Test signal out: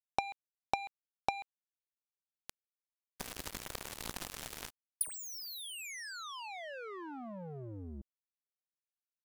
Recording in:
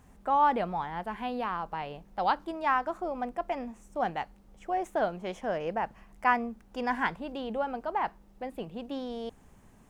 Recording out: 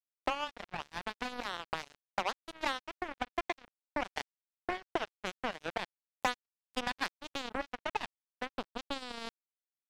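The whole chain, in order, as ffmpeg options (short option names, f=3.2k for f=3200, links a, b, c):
-af "acompressor=threshold=-34dB:ratio=12,aresample=32000,aresample=44100,acrusher=bits=4:mix=0:aa=0.5,volume=5.5dB"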